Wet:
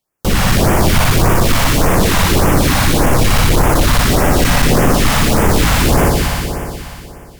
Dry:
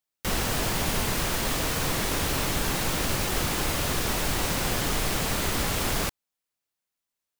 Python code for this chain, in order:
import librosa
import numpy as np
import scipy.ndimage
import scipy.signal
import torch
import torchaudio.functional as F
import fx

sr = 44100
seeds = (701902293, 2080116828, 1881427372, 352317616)

p1 = fx.high_shelf(x, sr, hz=2400.0, db=-9.0)
p2 = p1 + fx.echo_heads(p1, sr, ms=60, heads='all three', feedback_pct=73, wet_db=-9.0, dry=0)
p3 = fx.filter_lfo_notch(p2, sr, shape='sine', hz=1.7, low_hz=340.0, high_hz=4200.0, q=0.73)
p4 = fx.fold_sine(p3, sr, drive_db=6, ceiling_db=-12.0)
y = F.gain(torch.from_numpy(p4), 7.0).numpy()